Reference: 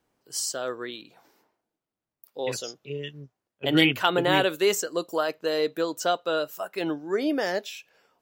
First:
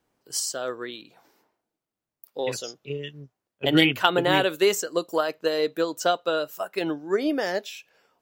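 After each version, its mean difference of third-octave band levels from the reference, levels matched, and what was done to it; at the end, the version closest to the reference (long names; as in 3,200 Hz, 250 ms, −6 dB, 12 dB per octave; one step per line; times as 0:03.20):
1.0 dB: transient designer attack +4 dB, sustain 0 dB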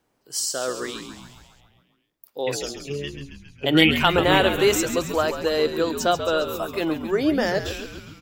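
7.0 dB: echo with shifted repeats 136 ms, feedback 63%, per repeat −78 Hz, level −9.5 dB
level +3.5 dB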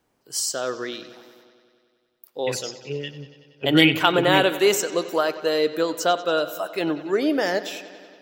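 3.5 dB: bucket-brigade delay 94 ms, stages 4,096, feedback 74%, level −16 dB
level +4 dB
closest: first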